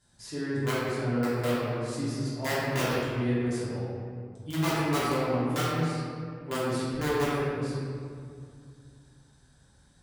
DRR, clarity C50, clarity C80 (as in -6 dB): -11.5 dB, -4.0 dB, -1.5 dB